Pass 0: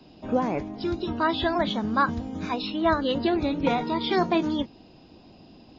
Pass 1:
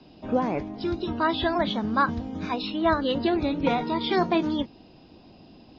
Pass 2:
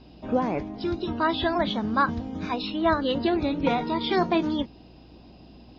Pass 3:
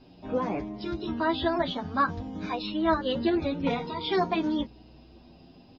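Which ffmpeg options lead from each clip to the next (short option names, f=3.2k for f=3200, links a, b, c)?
-af "lowpass=f=5.8k:w=0.5412,lowpass=f=5.8k:w=1.3066"
-af "aeval=exprs='val(0)+0.00251*(sin(2*PI*60*n/s)+sin(2*PI*2*60*n/s)/2+sin(2*PI*3*60*n/s)/3+sin(2*PI*4*60*n/s)/4+sin(2*PI*5*60*n/s)/5)':c=same"
-filter_complex "[0:a]asplit=2[a][b];[b]adelay=8.4,afreqshift=0.53[c];[a][c]amix=inputs=2:normalize=1"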